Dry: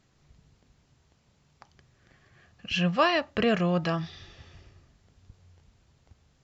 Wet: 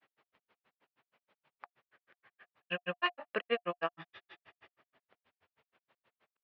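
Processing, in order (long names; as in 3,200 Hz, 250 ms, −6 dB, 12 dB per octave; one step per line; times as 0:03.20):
low-pass filter 2,900 Hz 24 dB per octave
granular cloud 83 ms, grains 6.3 per second, pitch spread up and down by 0 semitones
high-pass filter 560 Hz 12 dB per octave
notch filter 710 Hz, Q 20
in parallel at −3 dB: downward compressor, threshold −44 dBFS, peak gain reduction 16.5 dB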